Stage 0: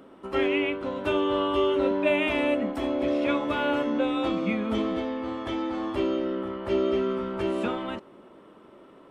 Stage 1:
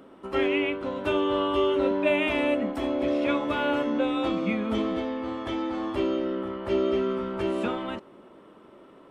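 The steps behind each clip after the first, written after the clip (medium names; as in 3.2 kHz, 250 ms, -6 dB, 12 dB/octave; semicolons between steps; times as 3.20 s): no audible change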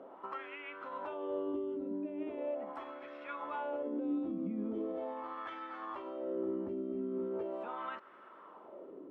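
compression 4:1, threshold -35 dBFS, peak gain reduction 13.5 dB; peak limiter -30.5 dBFS, peak gain reduction 6 dB; LFO band-pass sine 0.4 Hz 240–1500 Hz; trim +6 dB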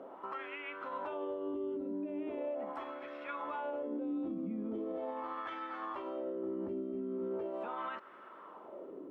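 peak limiter -34 dBFS, peak gain reduction 7 dB; trim +2.5 dB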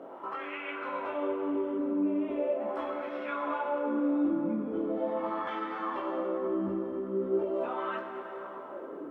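chorus voices 6, 0.7 Hz, delay 21 ms, depth 3.9 ms; plate-style reverb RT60 4.5 s, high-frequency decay 0.55×, DRR 4 dB; trim +7.5 dB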